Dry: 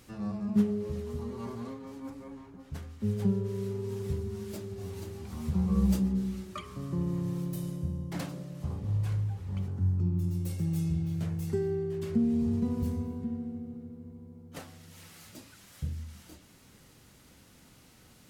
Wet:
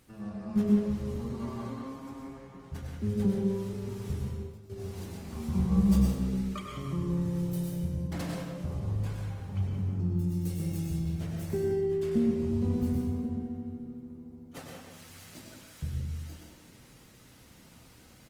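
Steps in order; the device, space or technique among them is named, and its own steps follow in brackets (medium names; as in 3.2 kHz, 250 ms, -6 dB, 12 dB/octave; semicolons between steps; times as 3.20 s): 3.73–4.70 s: gate with hold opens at -27 dBFS; speakerphone in a meeting room (reverberation RT60 0.80 s, pre-delay 92 ms, DRR 1 dB; speakerphone echo 180 ms, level -6 dB; level rider gain up to 4 dB; trim -5 dB; Opus 24 kbps 48 kHz)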